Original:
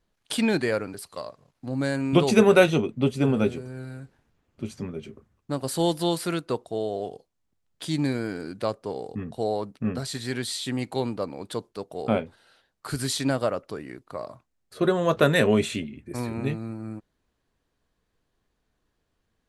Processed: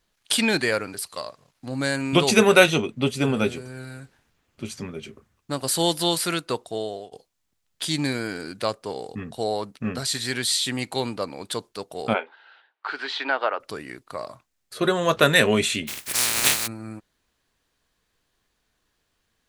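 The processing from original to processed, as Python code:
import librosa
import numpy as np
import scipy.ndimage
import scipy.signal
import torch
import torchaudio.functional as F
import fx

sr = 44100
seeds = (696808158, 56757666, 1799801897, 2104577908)

y = fx.cabinet(x, sr, low_hz=370.0, low_slope=24, high_hz=3200.0, hz=(550.0, 870.0, 1500.0), db=(-5, 8, 5), at=(12.13, 13.59), fade=0.02)
y = fx.spec_flatten(y, sr, power=0.21, at=(15.87, 16.66), fade=0.02)
y = fx.edit(y, sr, fx.fade_out_to(start_s=6.67, length_s=0.45, curve='qsin', floor_db=-19.0), tone=tone)
y = fx.tilt_shelf(y, sr, db=-5.5, hz=1100.0)
y = y * librosa.db_to_amplitude(4.0)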